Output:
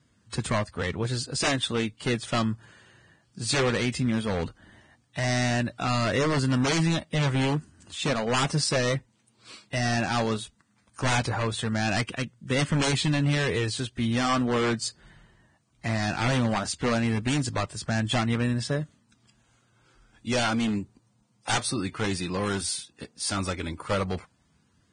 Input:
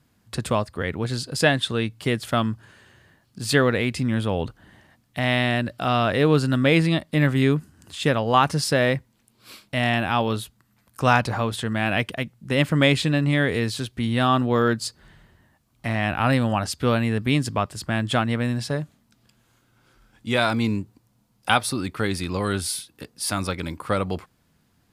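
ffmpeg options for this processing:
-af "aeval=exprs='0.15*(abs(mod(val(0)/0.15+3,4)-2)-1)':c=same,flanger=delay=0.6:depth=5.5:regen=-67:speed=0.16:shape=sinusoidal,volume=2dB" -ar 22050 -c:a libvorbis -b:a 16k

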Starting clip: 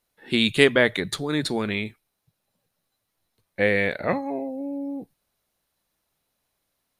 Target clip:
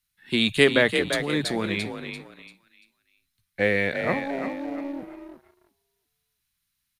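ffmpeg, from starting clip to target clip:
-filter_complex "[0:a]asplit=5[a][b][c][d][e];[b]adelay=342,afreqshift=40,volume=-7dB[f];[c]adelay=684,afreqshift=80,volume=-16.6dB[g];[d]adelay=1026,afreqshift=120,volume=-26.3dB[h];[e]adelay=1368,afreqshift=160,volume=-35.9dB[i];[a][f][g][h][i]amix=inputs=5:normalize=0,acrossover=split=200|1300|2700[j][k][l][m];[k]aeval=exprs='sgn(val(0))*max(abs(val(0))-0.00631,0)':c=same[n];[j][n][l][m]amix=inputs=4:normalize=0,volume=-1dB"

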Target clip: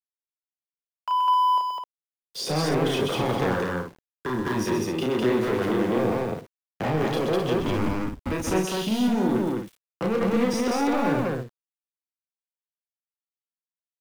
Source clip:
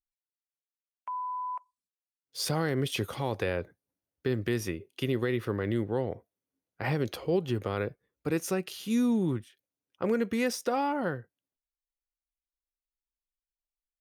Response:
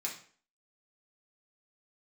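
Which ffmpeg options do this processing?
-filter_complex "[0:a]highpass=f=170:w=0.5412,highpass=f=170:w=1.3066,aemphasis=mode=reproduction:type=bsi,bandreject=f=4.4k:w=17,acrossover=split=2000[a][b];[a]adynamicsmooth=sensitivity=6.5:basefreq=650[c];[c][b]amix=inputs=2:normalize=0,asettb=1/sr,asplit=3[d][e][f];[d]atrim=end=9.374[g];[e]atrim=start=9.37:end=10.4,asetpts=PTS-STARTPTS,afade=t=in:d=0.004:c=qsin,afade=t=out:st=1.026:d=0.004:c=qsin,aecho=1:1:6:0.64,atrim=end_sample=45423[h];[f]atrim=start=10.396[i];[g][h]acrossfade=d=0.004:c1=hsin:c2=qsin[j];[j][i]acrossfade=d=0.004:c1=qsin:c2=hsin,acrossover=split=340|1000[k][l][m];[k]acompressor=threshold=-37dB:ratio=4[n];[l]acompressor=threshold=-34dB:ratio=4[o];[m]acompressor=threshold=-45dB:ratio=4[p];[n][o][p]amix=inputs=3:normalize=0,asplit=2[q][r];[r]alimiter=level_in=7dB:limit=-24dB:level=0:latency=1,volume=-7dB,volume=0dB[s];[q][s]amix=inputs=2:normalize=0,asoftclip=type=tanh:threshold=-31.5dB,asettb=1/sr,asplit=3[t][u][v];[t]atrim=end=3.434[w];[u]atrim=start=3.43:end=4.53,asetpts=PTS-STARTPTS,afade=t=in:d=0.004:c=qsin,afade=t=out:st=1.096:d=0.004:c=qsin,equalizer=f=400:t=o:w=0.33:g=-4,equalizer=f=630:t=o:w=0.33:g=-9,equalizer=f=1k:t=o:w=0.33:g=9,equalizer=f=1.6k:t=o:w=0.33:g=7,equalizer=f=2.5k:t=o:w=0.33:g=-11[x];[v]atrim=start=4.526[y];[w][x]acrossfade=d=0.004:c1=hsin:c2=qsin[z];[z][y]acrossfade=d=0.004:c1=qsin:c2=hsin,asettb=1/sr,asplit=3[aa][ab][ac];[aa]atrim=end=7.584[ad];[ab]atrim=start=7.58:end=8.31,asetpts=PTS-STARTPTS,afade=t=in:d=0.004:c=qsin,afade=t=out:st=0.726:d=0.004:c=qsin,afreqshift=-200[ae];[ac]atrim=start=8.306[af];[ad][ae]acrossfade=d=0.004:c1=hsin:c2=qsin[ag];[ag][af]acrossfade=d=0.004:c1=qsin:c2=hsin,aeval=exprs='val(0)*gte(abs(val(0)),0.00335)':c=same,aecho=1:1:32.07|128.3|204.1|259.5:0.708|0.447|0.891|0.447,volume=8dB"

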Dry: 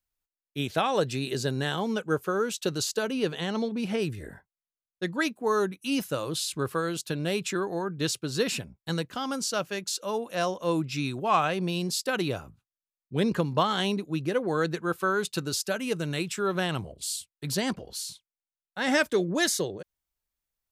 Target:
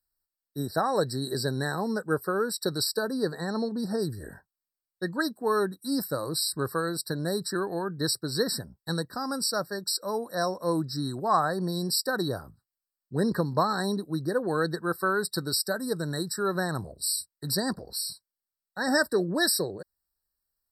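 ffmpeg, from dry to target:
-af "aemphasis=mode=production:type=cd,afftfilt=real='re*eq(mod(floor(b*sr/1024/1900),2),0)':imag='im*eq(mod(floor(b*sr/1024/1900),2),0)':win_size=1024:overlap=0.75"

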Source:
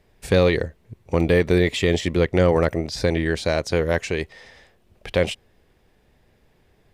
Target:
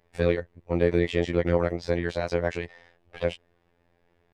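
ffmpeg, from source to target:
-filter_complex "[0:a]atempo=1.6,asplit=2[a][b];[b]highpass=f=720:p=1,volume=6dB,asoftclip=type=tanh:threshold=-7dB[c];[a][c]amix=inputs=2:normalize=0,lowpass=f=1.3k:p=1,volume=-6dB,afftfilt=real='hypot(re,im)*cos(PI*b)':imag='0':win_size=2048:overlap=0.75"

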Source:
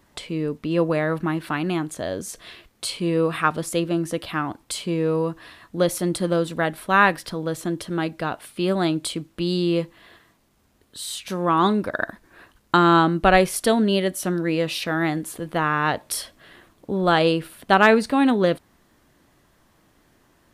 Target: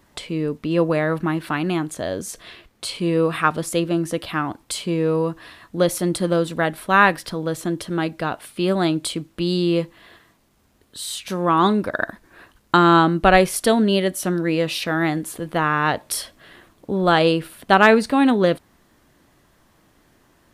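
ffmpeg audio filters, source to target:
-filter_complex "[0:a]asettb=1/sr,asplit=3[a][b][c];[a]atrim=end=2.424[d];[b]atrim=start=2.42:end=2.95,asetpts=PTS-STARTPTS,afade=t=in:d=0.004:c=qsin,afade=t=out:st=0.526:d=0.004:c=qsin,highshelf=f=4.9k:g=-5[e];[c]atrim=start=2.946[f];[d][e]acrossfade=d=0.004:c1=hsin:c2=qsin[g];[g][f]acrossfade=d=0.004:c1=qsin:c2=hsin,volume=2dB"

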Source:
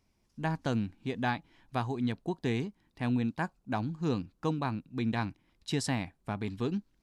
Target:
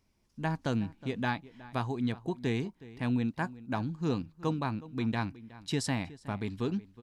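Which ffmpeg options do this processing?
-filter_complex "[0:a]bandreject=f=740:w=18,asplit=2[a][b];[b]adelay=367.3,volume=-18dB,highshelf=f=4k:g=-8.27[c];[a][c]amix=inputs=2:normalize=0"

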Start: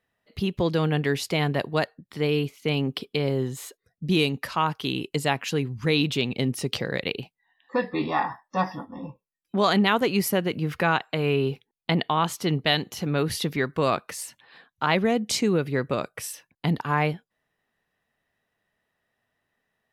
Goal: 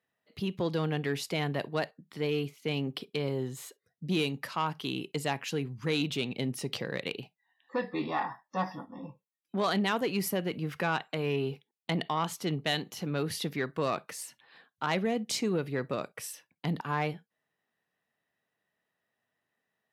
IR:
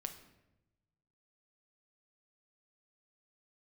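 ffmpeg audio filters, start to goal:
-filter_complex "[0:a]volume=10.5dB,asoftclip=hard,volume=-10.5dB,asplit=2[a][b];[1:a]atrim=start_sample=2205,atrim=end_sample=3087[c];[b][c]afir=irnorm=-1:irlink=0,volume=-7.5dB[d];[a][d]amix=inputs=2:normalize=0,asoftclip=type=tanh:threshold=-11.5dB,highpass=120,volume=-8dB"

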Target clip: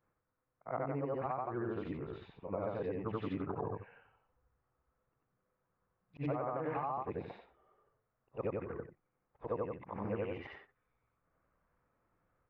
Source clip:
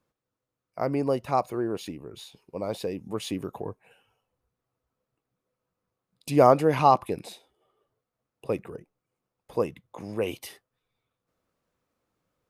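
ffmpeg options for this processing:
-af "afftfilt=real='re':imag='-im':win_size=8192:overlap=0.75,lowpass=f=1.8k:w=0.5412,lowpass=f=1.8k:w=1.3066,equalizer=f=310:w=0.34:g=-9.5,alimiter=level_in=3.5dB:limit=-24dB:level=0:latency=1:release=80,volume=-3.5dB,acompressor=threshold=-45dB:ratio=16,volume=12dB"

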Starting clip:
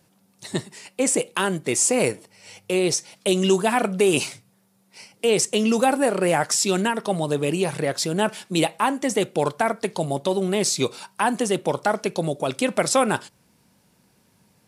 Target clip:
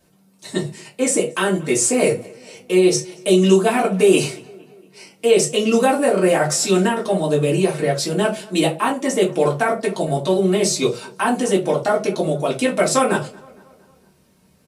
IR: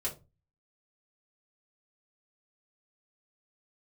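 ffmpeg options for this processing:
-filter_complex "[0:a]asplit=2[a][b];[b]adelay=230,lowpass=f=3.4k:p=1,volume=-23dB,asplit=2[c][d];[d]adelay=230,lowpass=f=3.4k:p=1,volume=0.54,asplit=2[e][f];[f]adelay=230,lowpass=f=3.4k:p=1,volume=0.54,asplit=2[g][h];[h]adelay=230,lowpass=f=3.4k:p=1,volume=0.54[i];[a][c][e][g][i]amix=inputs=5:normalize=0[j];[1:a]atrim=start_sample=2205,atrim=end_sample=6615[k];[j][k]afir=irnorm=-1:irlink=0"

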